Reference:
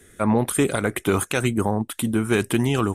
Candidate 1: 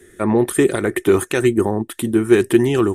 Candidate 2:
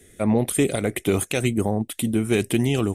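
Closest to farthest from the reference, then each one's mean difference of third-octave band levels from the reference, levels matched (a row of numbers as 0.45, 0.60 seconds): 2, 1; 1.5, 4.0 decibels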